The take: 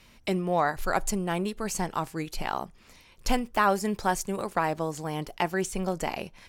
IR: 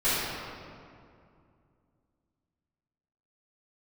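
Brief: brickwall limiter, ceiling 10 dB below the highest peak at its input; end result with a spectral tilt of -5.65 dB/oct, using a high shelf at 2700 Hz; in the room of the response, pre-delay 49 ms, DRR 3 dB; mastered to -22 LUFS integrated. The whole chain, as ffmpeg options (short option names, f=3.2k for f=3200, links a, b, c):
-filter_complex "[0:a]highshelf=f=2.7k:g=-6,alimiter=limit=-21dB:level=0:latency=1,asplit=2[a][b];[1:a]atrim=start_sample=2205,adelay=49[c];[b][c]afir=irnorm=-1:irlink=0,volume=-17.5dB[d];[a][d]amix=inputs=2:normalize=0,volume=9dB"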